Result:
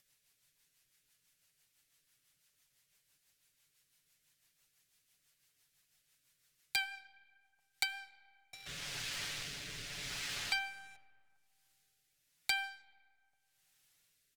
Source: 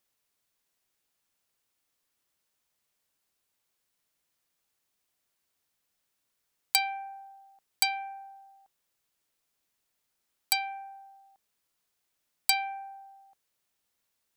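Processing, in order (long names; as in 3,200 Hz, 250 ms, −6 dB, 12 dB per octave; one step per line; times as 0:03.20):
0:08.53–0:10.96: converter with a step at zero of −31 dBFS
noise gate −46 dBFS, range −7 dB
treble cut that deepens with the level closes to 2,300 Hz, closed at −33 dBFS
flat-topped bell 520 Hz −8.5 dB 2.8 octaves
comb filter 7 ms, depth 58%
leveller curve on the samples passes 3
upward compression, threshold −42 dBFS
rotating-speaker cabinet horn 6 Hz, later 0.85 Hz, at 0:07.65
comb and all-pass reverb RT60 2.1 s, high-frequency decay 0.55×, pre-delay 35 ms, DRR 19 dB
level −7.5 dB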